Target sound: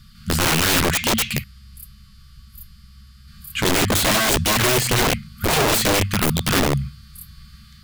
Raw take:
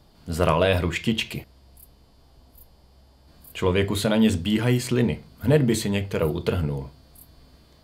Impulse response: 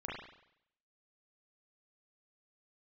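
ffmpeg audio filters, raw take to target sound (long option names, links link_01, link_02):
-af "afftfilt=real='re*(1-between(b*sr/4096,230,1100))':imag='im*(1-between(b*sr/4096,230,1100))':win_size=4096:overlap=0.75,apsyclip=14dB,aeval=exprs='(mod(2.66*val(0)+1,2)-1)/2.66':channel_layout=same,volume=-4.5dB"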